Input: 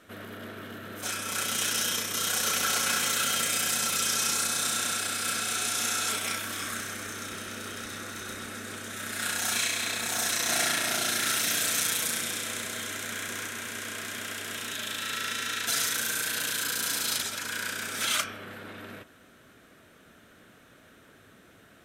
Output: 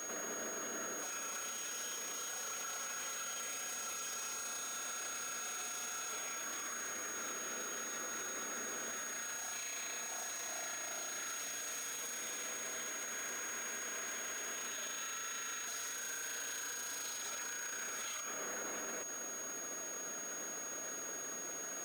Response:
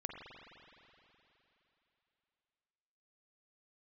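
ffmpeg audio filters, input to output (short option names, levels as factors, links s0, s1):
-af "highpass=420,highshelf=f=2500:g=-11.5,acompressor=threshold=0.00447:ratio=6,alimiter=level_in=15:limit=0.0631:level=0:latency=1:release=98,volume=0.0668,aeval=exprs='val(0)+0.00224*sin(2*PI*6600*n/s)':c=same,acrusher=bits=2:mode=log:mix=0:aa=0.000001,volume=3.35"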